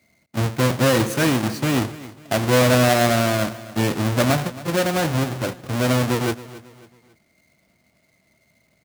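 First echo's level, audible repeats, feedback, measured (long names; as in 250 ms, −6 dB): −17.5 dB, 3, 39%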